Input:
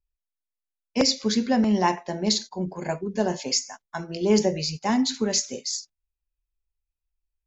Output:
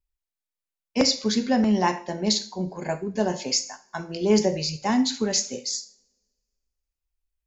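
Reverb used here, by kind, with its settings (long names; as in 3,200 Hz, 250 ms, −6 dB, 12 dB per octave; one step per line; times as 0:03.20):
coupled-rooms reverb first 0.46 s, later 1.7 s, from −27 dB, DRR 9.5 dB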